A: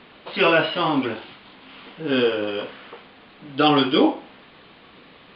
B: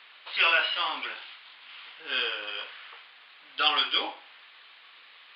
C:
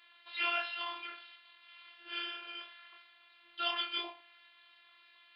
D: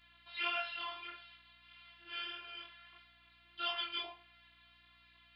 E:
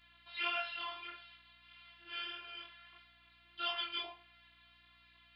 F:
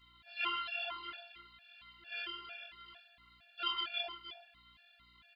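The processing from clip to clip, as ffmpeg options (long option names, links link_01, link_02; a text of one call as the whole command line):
ffmpeg -i in.wav -af "highpass=1500" out.wav
ffmpeg -i in.wav -af "flanger=delay=20:depth=4.4:speed=2.9,afftfilt=real='hypot(re,im)*cos(PI*b)':imag='0':win_size=512:overlap=0.75,volume=-3.5dB" out.wav
ffmpeg -i in.wav -af "flanger=delay=16:depth=2.8:speed=1.6,aeval=exprs='val(0)+0.000224*(sin(2*PI*60*n/s)+sin(2*PI*2*60*n/s)/2+sin(2*PI*3*60*n/s)/3+sin(2*PI*4*60*n/s)/4+sin(2*PI*5*60*n/s)/5)':channel_layout=same" out.wav
ffmpeg -i in.wav -af anull out.wav
ffmpeg -i in.wav -filter_complex "[0:a]asplit=2[link_01][link_02];[link_02]aecho=0:1:312:0.266[link_03];[link_01][link_03]amix=inputs=2:normalize=0,afftfilt=real='re*gt(sin(2*PI*2.2*pts/sr)*(1-2*mod(floor(b*sr/1024/460),2)),0)':imag='im*gt(sin(2*PI*2.2*pts/sr)*(1-2*mod(floor(b*sr/1024/460),2)),0)':win_size=1024:overlap=0.75,volume=4dB" out.wav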